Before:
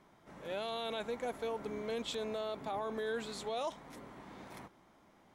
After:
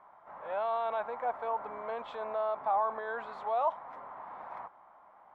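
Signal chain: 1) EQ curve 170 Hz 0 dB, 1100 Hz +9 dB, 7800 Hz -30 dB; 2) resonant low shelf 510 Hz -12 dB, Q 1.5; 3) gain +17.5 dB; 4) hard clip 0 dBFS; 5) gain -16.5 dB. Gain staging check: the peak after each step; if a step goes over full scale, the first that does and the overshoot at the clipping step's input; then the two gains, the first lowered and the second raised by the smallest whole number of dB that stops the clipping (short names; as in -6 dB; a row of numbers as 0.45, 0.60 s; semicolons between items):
-21.0, -20.5, -3.0, -3.0, -19.5 dBFS; no overload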